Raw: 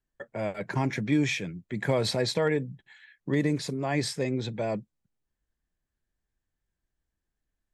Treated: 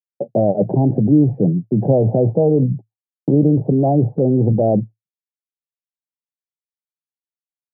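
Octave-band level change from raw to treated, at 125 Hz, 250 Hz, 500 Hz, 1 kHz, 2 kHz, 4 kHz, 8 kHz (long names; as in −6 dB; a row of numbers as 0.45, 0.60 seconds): +15.5 dB, +14.0 dB, +12.5 dB, +9.5 dB, below −35 dB, below −40 dB, below −40 dB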